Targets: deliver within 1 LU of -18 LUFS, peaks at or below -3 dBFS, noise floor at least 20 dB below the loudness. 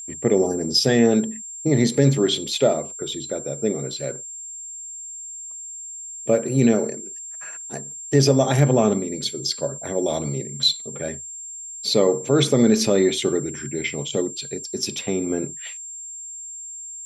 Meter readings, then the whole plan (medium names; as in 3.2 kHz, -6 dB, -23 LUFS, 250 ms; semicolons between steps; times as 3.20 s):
steady tone 7.4 kHz; tone level -33 dBFS; loudness -21.5 LUFS; peak level -4.5 dBFS; loudness target -18.0 LUFS
-> band-stop 7.4 kHz, Q 30; trim +3.5 dB; peak limiter -3 dBFS